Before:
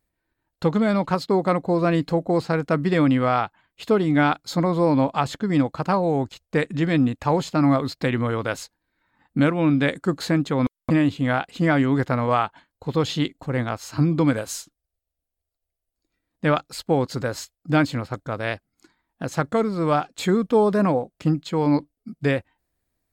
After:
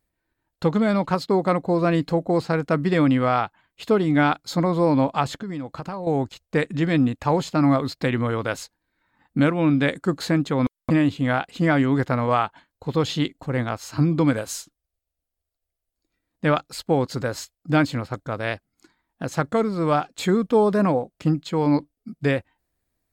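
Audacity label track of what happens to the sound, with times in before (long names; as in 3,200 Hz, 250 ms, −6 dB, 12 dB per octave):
5.390000	6.070000	downward compressor 5 to 1, threshold −28 dBFS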